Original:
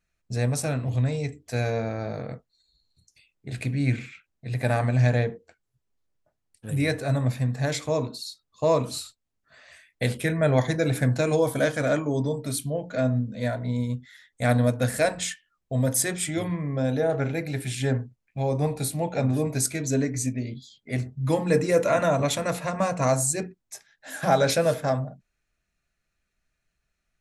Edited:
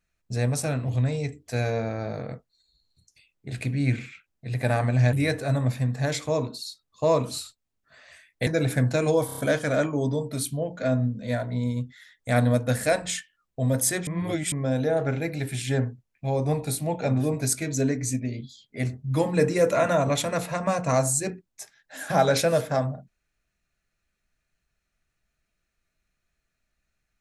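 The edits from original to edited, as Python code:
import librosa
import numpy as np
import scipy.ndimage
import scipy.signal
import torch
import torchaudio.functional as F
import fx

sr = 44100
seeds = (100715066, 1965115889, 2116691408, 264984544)

y = fx.edit(x, sr, fx.cut(start_s=5.13, length_s=1.6),
    fx.cut(start_s=10.07, length_s=0.65),
    fx.stutter(start_s=11.51, slice_s=0.03, count=5),
    fx.reverse_span(start_s=16.2, length_s=0.45), tone=tone)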